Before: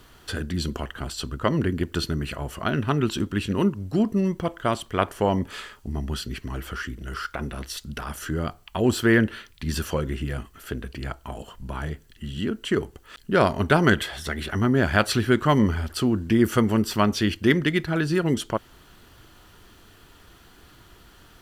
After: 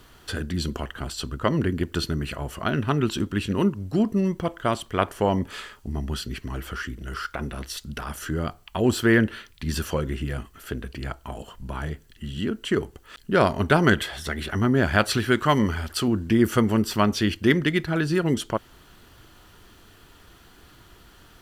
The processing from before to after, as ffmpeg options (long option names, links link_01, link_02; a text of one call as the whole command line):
ffmpeg -i in.wav -filter_complex "[0:a]asettb=1/sr,asplit=3[link_01][link_02][link_03];[link_01]atrim=end=15.174[link_04];[link_02]atrim=start=15.17:end=16.08,asetpts=PTS-STARTPTS,afade=type=in:duration=0.004:curve=qsin,afade=type=out:start_time=0.906:duration=0.004:curve=qsin,tiltshelf=frequency=670:gain=-3[link_05];[link_03]atrim=start=16.076[link_06];[link_04][link_05]acrossfade=duration=0.004:curve1=hsin:curve2=qsin[link_07];[link_07][link_06]acrossfade=duration=0.004:curve1=qsin:curve2=hsin" out.wav